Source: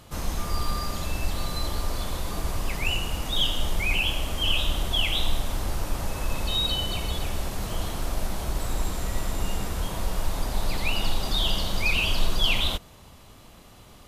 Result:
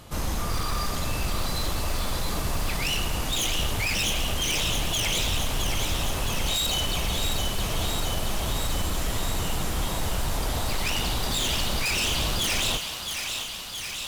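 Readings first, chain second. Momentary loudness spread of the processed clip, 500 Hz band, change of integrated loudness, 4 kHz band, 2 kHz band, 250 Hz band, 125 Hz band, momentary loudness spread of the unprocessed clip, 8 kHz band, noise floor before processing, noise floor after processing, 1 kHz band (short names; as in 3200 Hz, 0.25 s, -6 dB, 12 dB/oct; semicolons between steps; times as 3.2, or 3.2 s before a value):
5 LU, +2.0 dB, +1.0 dB, +1.0 dB, +0.5 dB, +1.5 dB, +1.0 dB, 8 LU, +8.0 dB, -50 dBFS, -34 dBFS, +2.5 dB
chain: wavefolder -24 dBFS; thinning echo 0.668 s, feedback 76%, high-pass 870 Hz, level -5.5 dB; gain +3 dB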